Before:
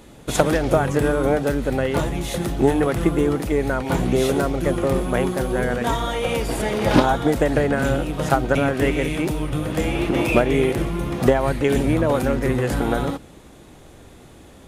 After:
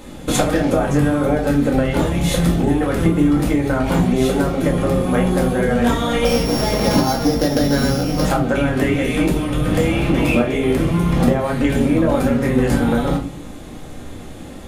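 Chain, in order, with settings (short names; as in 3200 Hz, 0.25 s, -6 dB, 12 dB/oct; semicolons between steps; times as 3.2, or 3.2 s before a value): 6.25–8.25 sample sorter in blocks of 8 samples; compressor, threshold -23 dBFS, peak gain reduction 13.5 dB; shoebox room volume 260 m³, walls furnished, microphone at 2.1 m; gain +5 dB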